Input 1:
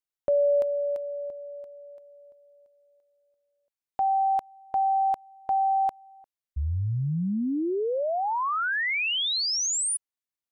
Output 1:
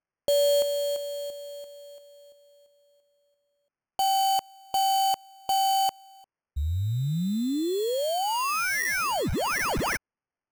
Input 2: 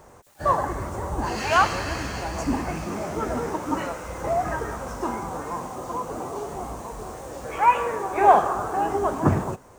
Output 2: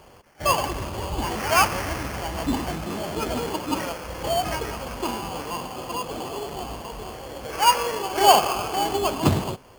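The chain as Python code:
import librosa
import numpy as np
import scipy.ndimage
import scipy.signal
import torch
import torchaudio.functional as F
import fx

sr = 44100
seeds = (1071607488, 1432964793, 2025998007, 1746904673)

y = fx.sample_hold(x, sr, seeds[0], rate_hz=3800.0, jitter_pct=0)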